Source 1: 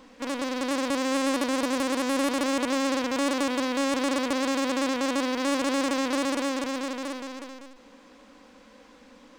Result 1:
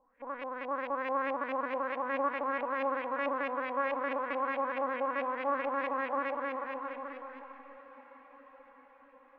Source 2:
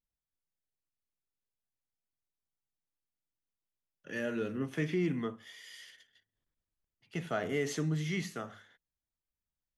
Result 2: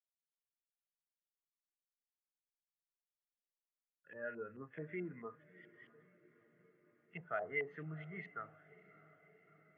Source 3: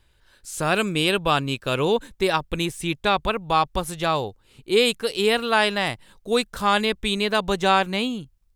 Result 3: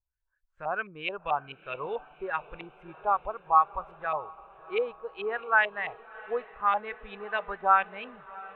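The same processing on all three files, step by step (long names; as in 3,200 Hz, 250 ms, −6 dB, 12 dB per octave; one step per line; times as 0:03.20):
parametric band 260 Hz −10 dB 1.6 octaves
auto-filter low-pass saw up 4.6 Hz 730–2,600 Hz
dynamic equaliser 100 Hz, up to −7 dB, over −49 dBFS, Q 1.1
on a send: feedback delay with all-pass diffusion 659 ms, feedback 75%, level −13 dB
on the sum: every bin expanded away from the loudest bin 1.5 to 1
level −5.5 dB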